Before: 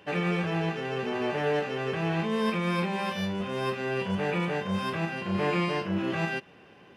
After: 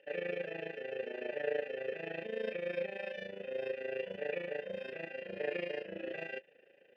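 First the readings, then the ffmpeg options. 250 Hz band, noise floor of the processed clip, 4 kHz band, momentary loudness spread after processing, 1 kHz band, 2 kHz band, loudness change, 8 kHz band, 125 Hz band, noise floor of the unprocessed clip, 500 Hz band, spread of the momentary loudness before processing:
-19.5 dB, -64 dBFS, -14.0 dB, 5 LU, -20.5 dB, -9.5 dB, -10.5 dB, under -25 dB, -24.5 dB, -54 dBFS, -6.0 dB, 4 LU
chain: -filter_complex "[0:a]tremolo=f=27:d=0.788,aeval=exprs='0.141*(cos(1*acos(clip(val(0)/0.141,-1,1)))-cos(1*PI/2))+0.0141*(cos(3*acos(clip(val(0)/0.141,-1,1)))-cos(3*PI/2))':c=same,asplit=3[a][b][c];[a]bandpass=f=530:t=q:w=8,volume=0dB[d];[b]bandpass=f=1.84k:t=q:w=8,volume=-6dB[e];[c]bandpass=f=2.48k:t=q:w=8,volume=-9dB[f];[d][e][f]amix=inputs=3:normalize=0,volume=7dB"

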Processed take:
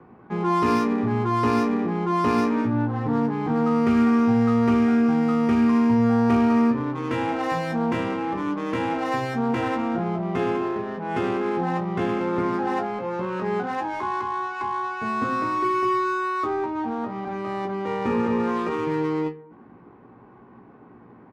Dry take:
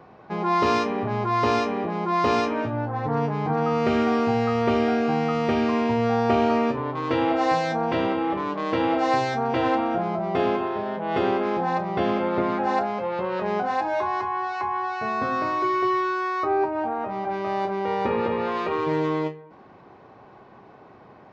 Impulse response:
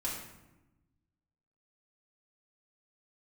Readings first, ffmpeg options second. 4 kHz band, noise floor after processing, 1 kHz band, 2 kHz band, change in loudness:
-4.5 dB, -49 dBFS, -2.0 dB, -1.0 dB, +0.5 dB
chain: -filter_complex "[0:a]equalizer=f=250:t=o:w=0.67:g=7,equalizer=f=630:t=o:w=0.67:g=-9,equalizer=f=4k:t=o:w=0.67:g=-8,acrossover=split=210|650|1400[a][b][c][d];[b]alimiter=limit=-22.5dB:level=0:latency=1[e];[a][e][c][d]amix=inputs=4:normalize=0,adynamicsmooth=sensitivity=7.5:basefreq=2k,asplit=2[f][g];[g]adelay=17,volume=-7dB[h];[f][h]amix=inputs=2:normalize=0"

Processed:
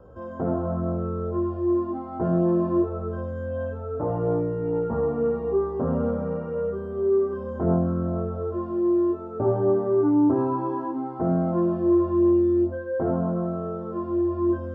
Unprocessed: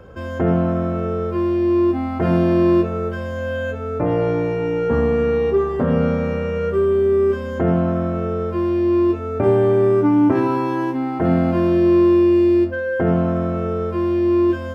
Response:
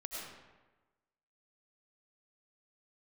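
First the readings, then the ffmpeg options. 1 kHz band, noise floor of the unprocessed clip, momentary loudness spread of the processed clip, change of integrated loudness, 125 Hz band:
-6.0 dB, -27 dBFS, 10 LU, -6.5 dB, -6.5 dB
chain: -filter_complex "[0:a]acrossover=split=3000[a][b];[b]acompressor=threshold=-59dB:ratio=4:attack=1:release=60[c];[a][c]amix=inputs=2:normalize=0,equalizer=f=2.3k:t=o:w=0.43:g=-12.5,flanger=delay=16.5:depth=7:speed=0.44,highshelf=f=1.5k:t=q:w=1.5:g=-9.5,asplit=2[d][e];[1:a]atrim=start_sample=2205,adelay=148[f];[e][f]afir=irnorm=-1:irlink=0,volume=-18.5dB[g];[d][g]amix=inputs=2:normalize=0,volume=-4dB"

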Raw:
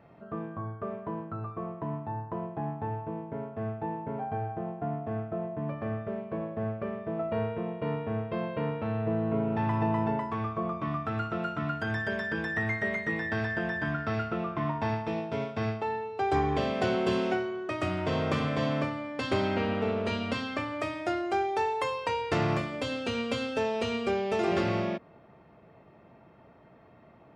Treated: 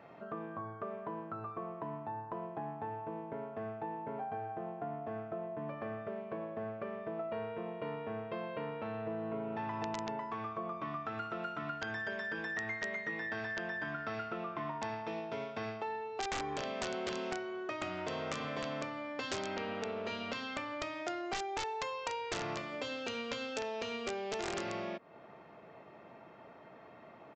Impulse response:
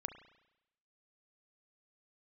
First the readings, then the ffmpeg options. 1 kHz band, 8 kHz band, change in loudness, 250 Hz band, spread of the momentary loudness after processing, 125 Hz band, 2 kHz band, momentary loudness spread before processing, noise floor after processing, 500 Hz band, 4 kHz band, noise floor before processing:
-6.5 dB, n/a, -8.0 dB, -11.0 dB, 5 LU, -15.5 dB, -6.0 dB, 8 LU, -55 dBFS, -8.0 dB, -4.5 dB, -56 dBFS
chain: -af "highpass=f=420:p=1,aresample=16000,aeval=exprs='(mod(11.9*val(0)+1,2)-1)/11.9':c=same,aresample=44100,acompressor=threshold=-46dB:ratio=2.5,volume=4.5dB"

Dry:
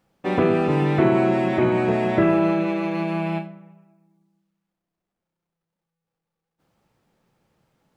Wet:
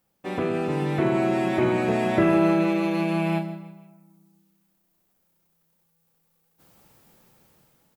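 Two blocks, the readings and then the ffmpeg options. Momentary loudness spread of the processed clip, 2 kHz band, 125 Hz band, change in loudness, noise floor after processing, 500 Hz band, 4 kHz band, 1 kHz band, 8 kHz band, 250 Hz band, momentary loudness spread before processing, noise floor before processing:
9 LU, -1.5 dB, -3.0 dB, -2.5 dB, -70 dBFS, -3.0 dB, 0.0 dB, -2.5 dB, n/a, -2.0 dB, 8 LU, -84 dBFS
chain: -af "aemphasis=mode=production:type=50fm,aecho=1:1:158|316|474:0.178|0.0569|0.0182,dynaudnorm=f=340:g=7:m=16dB,volume=-7.5dB"

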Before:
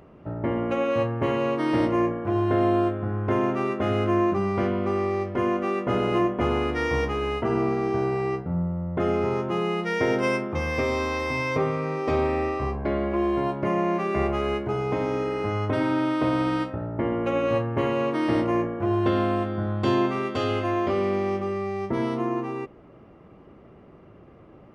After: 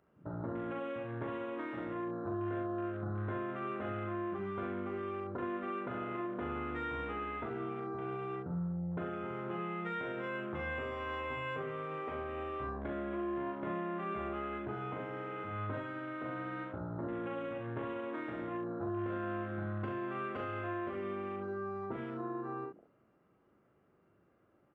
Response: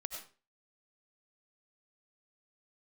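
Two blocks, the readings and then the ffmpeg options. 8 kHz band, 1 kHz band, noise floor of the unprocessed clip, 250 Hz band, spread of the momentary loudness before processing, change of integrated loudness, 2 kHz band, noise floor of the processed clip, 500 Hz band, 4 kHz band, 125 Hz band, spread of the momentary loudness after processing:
n/a, -12.0 dB, -50 dBFS, -14.5 dB, 5 LU, -14.0 dB, -11.0 dB, -70 dBFS, -15.0 dB, -17.5 dB, -13.5 dB, 3 LU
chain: -filter_complex "[0:a]highpass=f=100:p=1,equalizer=f=1.5k:w=3.1:g=8.5,alimiter=limit=-18dB:level=0:latency=1:release=92,acrossover=split=4500[a][b];[b]acompressor=threshold=-57dB:ratio=4:attack=1:release=60[c];[a][c]amix=inputs=2:normalize=0,afwtdn=0.0178,acompressor=threshold=-33dB:ratio=6,aecho=1:1:40|68:0.596|0.447,volume=-5.5dB"

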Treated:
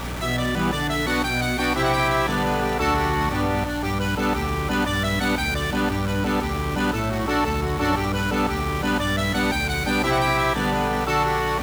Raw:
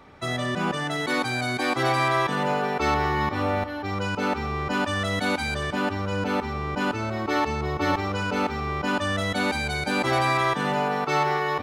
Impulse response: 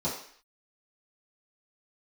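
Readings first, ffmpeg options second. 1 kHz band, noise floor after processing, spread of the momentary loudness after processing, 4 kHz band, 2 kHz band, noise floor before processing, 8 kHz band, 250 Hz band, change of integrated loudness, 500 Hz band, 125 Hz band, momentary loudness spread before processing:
+1.5 dB, -26 dBFS, 4 LU, +3.5 dB, +2.5 dB, -33 dBFS, +5.5 dB, +4.0 dB, +3.0 dB, +1.5 dB, +4.5 dB, 5 LU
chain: -filter_complex "[0:a]aeval=exprs='val(0)+0.5*0.0422*sgn(val(0))':c=same,asplit=2[a][b];[1:a]atrim=start_sample=2205,lowshelf=f=450:g=-10.5[c];[b][c]afir=irnorm=-1:irlink=0,volume=-18.5dB[d];[a][d]amix=inputs=2:normalize=0,aeval=exprs='val(0)+0.0282*(sin(2*PI*60*n/s)+sin(2*PI*2*60*n/s)/2+sin(2*PI*3*60*n/s)/3+sin(2*PI*4*60*n/s)/4+sin(2*PI*5*60*n/s)/5)':c=same"

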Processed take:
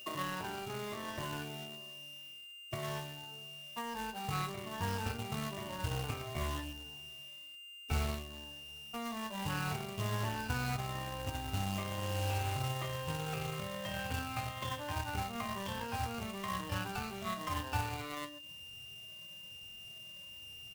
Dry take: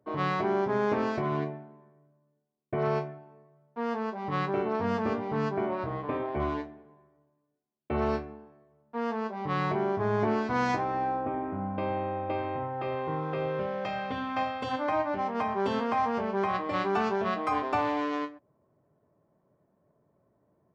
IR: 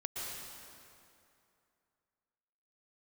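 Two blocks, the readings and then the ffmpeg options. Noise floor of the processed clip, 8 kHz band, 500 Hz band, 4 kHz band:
-51 dBFS, n/a, -14.0 dB, +4.0 dB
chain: -filter_complex "[0:a]afftfilt=real='re*pow(10,14/40*sin(2*PI*(1.2*log(max(b,1)*sr/1024/100)/log(2)-(-1.1)*(pts-256)/sr)))':imag='im*pow(10,14/40*sin(2*PI*(1.2*log(max(b,1)*sr/1024/100)/log(2)-(-1.1)*(pts-256)/sr)))':win_size=1024:overlap=0.75,bandreject=f=60:t=h:w=6,bandreject=f=120:t=h:w=6,bandreject=f=180:t=h:w=6,bandreject=f=240:t=h:w=6,bandreject=f=300:t=h:w=6,bandreject=f=360:t=h:w=6,bandreject=f=420:t=h:w=6,aeval=exprs='val(0)+0.00891*sin(2*PI*2800*n/s)':c=same,acrossover=split=180|2800[a][b][c];[a]acompressor=threshold=-48dB:ratio=4[d];[b]acompressor=threshold=-39dB:ratio=4[e];[c]acompressor=threshold=-50dB:ratio=4[f];[d][e][f]amix=inputs=3:normalize=0,acrossover=split=180|760|1100[g][h][i][j];[h]alimiter=level_in=15.5dB:limit=-24dB:level=0:latency=1,volume=-15.5dB[k];[g][k][i][j]amix=inputs=4:normalize=0,asubboost=boost=7:cutoff=110,acrusher=bits=3:mode=log:mix=0:aa=0.000001,aeval=exprs='0.0531*(cos(1*acos(clip(val(0)/0.0531,-1,1)))-cos(1*PI/2))+0.00376*(cos(7*acos(clip(val(0)/0.0531,-1,1)))-cos(7*PI/2))':c=same,asplit=2[l][m];[m]adelay=17,volume=-12.5dB[n];[l][n]amix=inputs=2:normalize=0,volume=1.5dB"

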